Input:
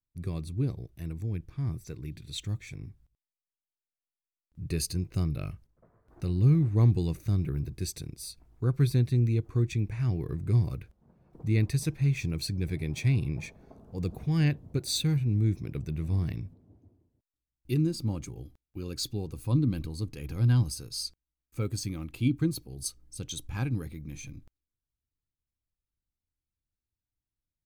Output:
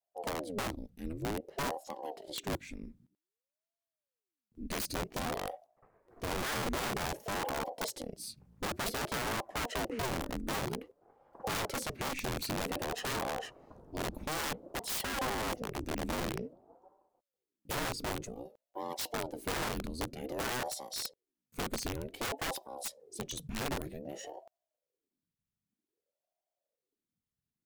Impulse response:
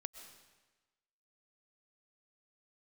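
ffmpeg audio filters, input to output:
-af "aeval=exprs='(mod(22.4*val(0)+1,2)-1)/22.4':c=same,aeval=exprs='val(0)*sin(2*PI*400*n/s+400*0.7/0.53*sin(2*PI*0.53*n/s))':c=same"

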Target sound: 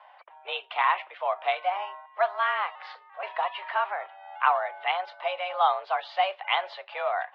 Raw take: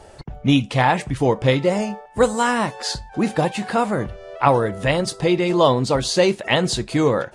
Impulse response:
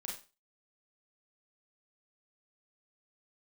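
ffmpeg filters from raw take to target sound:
-filter_complex "[0:a]asettb=1/sr,asplit=3[a][b][c];[a]atrim=end=2.754[d];[b]atrim=start=2.75:end=3.23,asetpts=PTS-STARTPTS,afade=t=in:d=0.004:c=qsin,afade=t=out:st=0.476:d=0.004:c=qsin,aeval=exprs='val(0)*sin(2*PI*170*n/s)':c=same[e];[c]atrim=start=3.226[f];[d][e]acrossfade=d=0.004:c1=hsin:c2=qsin[g];[g][f]acrossfade=d=0.004:c1=qsin:c2=hsin,highpass=f=490:t=q:w=0.5412,highpass=f=490:t=q:w=1.307,lowpass=f=3.1k:t=q:w=0.5176,lowpass=f=3.1k:t=q:w=0.7071,lowpass=f=3.1k:t=q:w=1.932,afreqshift=190,volume=-5.5dB"

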